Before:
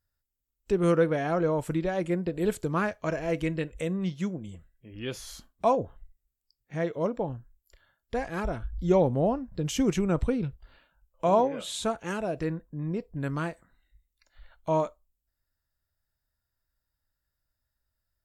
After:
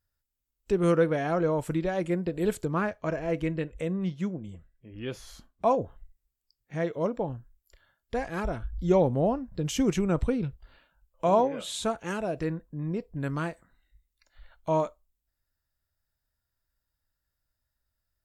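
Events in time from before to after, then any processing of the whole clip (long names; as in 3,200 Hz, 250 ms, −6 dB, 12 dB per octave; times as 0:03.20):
0:02.65–0:05.71: high-shelf EQ 3,000 Hz −8 dB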